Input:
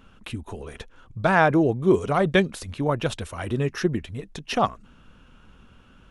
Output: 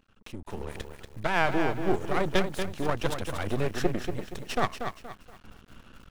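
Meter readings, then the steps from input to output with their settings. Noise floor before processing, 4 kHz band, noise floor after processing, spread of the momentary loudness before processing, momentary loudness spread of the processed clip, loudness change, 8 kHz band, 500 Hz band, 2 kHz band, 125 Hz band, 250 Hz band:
−53 dBFS, −3.0 dB, −59 dBFS, 18 LU, 17 LU, −7.0 dB, −2.5 dB, −6.5 dB, −5.0 dB, −7.5 dB, −7.5 dB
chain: automatic gain control gain up to 12.5 dB
half-wave rectification
feedback echo at a low word length 236 ms, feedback 35%, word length 7 bits, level −7 dB
level −8 dB

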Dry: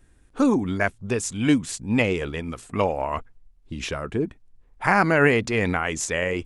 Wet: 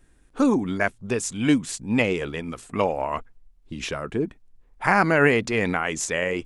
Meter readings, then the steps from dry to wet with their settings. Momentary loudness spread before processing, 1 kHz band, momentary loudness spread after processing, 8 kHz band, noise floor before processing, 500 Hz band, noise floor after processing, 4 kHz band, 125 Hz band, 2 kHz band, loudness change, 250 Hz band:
12 LU, 0.0 dB, 13 LU, 0.0 dB, −57 dBFS, 0.0 dB, −57 dBFS, 0.0 dB, −2.0 dB, 0.0 dB, 0.0 dB, −0.5 dB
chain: parametric band 84 Hz −8 dB 0.7 octaves

